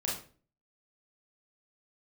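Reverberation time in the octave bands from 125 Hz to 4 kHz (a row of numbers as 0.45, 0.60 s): 0.55, 0.55, 0.45, 0.35, 0.35, 0.30 s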